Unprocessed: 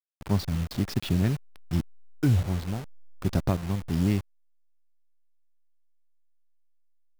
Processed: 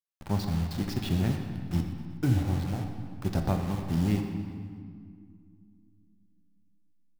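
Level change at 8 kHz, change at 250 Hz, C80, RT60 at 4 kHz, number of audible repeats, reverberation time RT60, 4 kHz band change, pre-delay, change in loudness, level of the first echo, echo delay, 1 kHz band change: −3.0 dB, −1.0 dB, 6.0 dB, 1.5 s, 3, 2.1 s, −2.0 dB, 3 ms, −2.0 dB, −14.5 dB, 123 ms, +1.0 dB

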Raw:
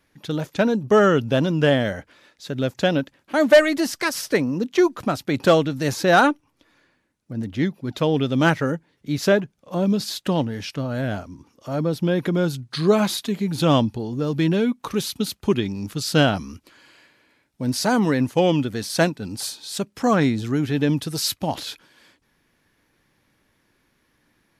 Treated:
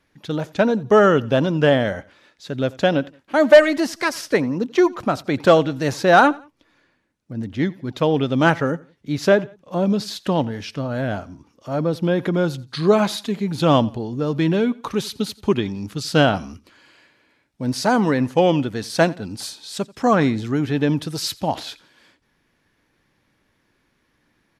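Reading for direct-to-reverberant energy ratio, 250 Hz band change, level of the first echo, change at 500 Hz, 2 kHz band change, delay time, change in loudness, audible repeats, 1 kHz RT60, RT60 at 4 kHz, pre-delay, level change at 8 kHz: no reverb audible, +1.0 dB, −22.5 dB, +2.5 dB, +1.5 dB, 87 ms, +1.5 dB, 2, no reverb audible, no reverb audible, no reverb audible, −3.0 dB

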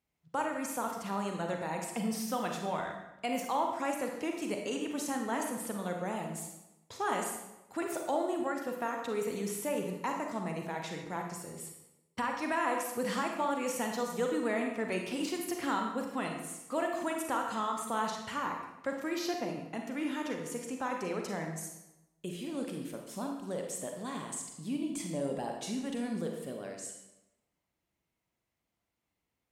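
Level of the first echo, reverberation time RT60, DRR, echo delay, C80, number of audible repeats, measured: no echo audible, 0.95 s, 2.0 dB, no echo audible, 6.0 dB, no echo audible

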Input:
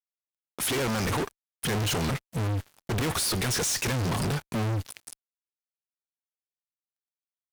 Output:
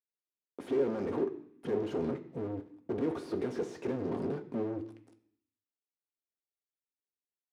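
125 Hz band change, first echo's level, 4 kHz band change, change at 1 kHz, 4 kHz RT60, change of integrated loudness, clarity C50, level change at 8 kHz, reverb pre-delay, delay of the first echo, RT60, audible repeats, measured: −16.0 dB, no echo audible, −25.5 dB, −11.5 dB, 0.85 s, −7.0 dB, 13.0 dB, below −30 dB, 3 ms, no echo audible, 0.65 s, no echo audible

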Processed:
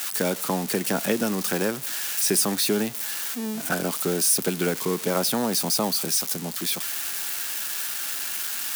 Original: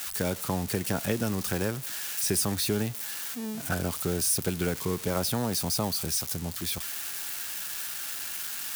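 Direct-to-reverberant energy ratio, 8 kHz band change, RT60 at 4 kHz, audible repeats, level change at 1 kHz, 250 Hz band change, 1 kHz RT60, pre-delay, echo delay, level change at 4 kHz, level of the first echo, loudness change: no reverb audible, +5.5 dB, no reverb audible, no echo audible, +5.5 dB, +4.5 dB, no reverb audible, no reverb audible, no echo audible, +5.5 dB, no echo audible, +5.0 dB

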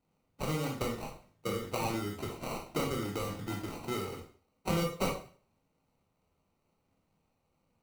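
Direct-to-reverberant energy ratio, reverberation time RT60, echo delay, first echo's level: −0.5 dB, 0.45 s, no echo audible, no echo audible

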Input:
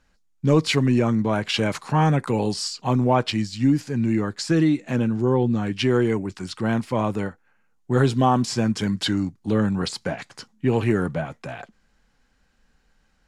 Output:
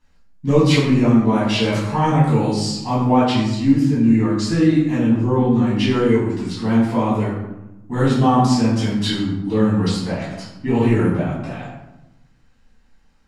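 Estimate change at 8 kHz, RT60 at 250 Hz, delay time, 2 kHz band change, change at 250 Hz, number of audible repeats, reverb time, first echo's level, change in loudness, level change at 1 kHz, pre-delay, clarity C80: +1.0 dB, 1.3 s, no echo audible, +2.0 dB, +6.0 dB, no echo audible, 0.95 s, no echo audible, +5.0 dB, +4.0 dB, 4 ms, 5.0 dB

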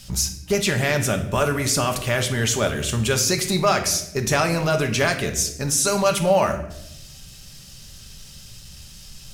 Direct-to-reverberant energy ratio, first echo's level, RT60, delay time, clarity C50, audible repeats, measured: 5.0 dB, no echo audible, 0.85 s, no echo audible, 10.0 dB, no echo audible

